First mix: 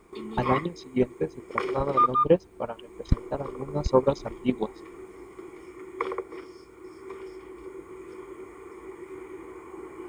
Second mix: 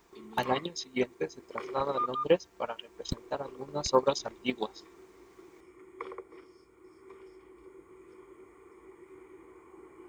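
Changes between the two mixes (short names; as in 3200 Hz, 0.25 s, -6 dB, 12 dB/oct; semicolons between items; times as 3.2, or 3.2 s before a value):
speech: add tilt +4 dB/oct; background -11.0 dB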